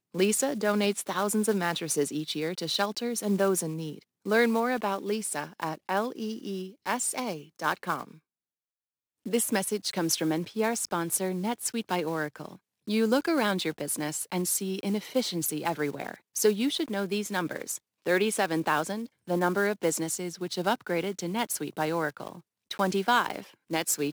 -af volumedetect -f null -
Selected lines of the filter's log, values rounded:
mean_volume: -29.6 dB
max_volume: -11.5 dB